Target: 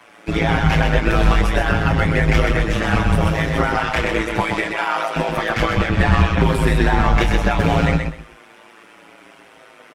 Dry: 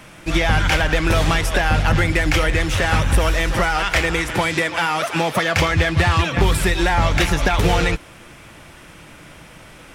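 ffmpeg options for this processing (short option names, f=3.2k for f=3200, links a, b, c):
-filter_complex "[0:a]highshelf=f=3.4k:g=-11,acrossover=split=260|560|3000[a][b][c][d];[a]acrusher=bits=3:mix=0:aa=0.5[e];[e][b][c][d]amix=inputs=4:normalize=0,tremolo=f=110:d=0.947,asplit=2[f][g];[g]adelay=25,volume=-11dB[h];[f][h]amix=inputs=2:normalize=0,aecho=1:1:127|254|381:0.562|0.124|0.0272,asplit=2[i][j];[j]adelay=6.5,afreqshift=-0.68[k];[i][k]amix=inputs=2:normalize=1,volume=6.5dB"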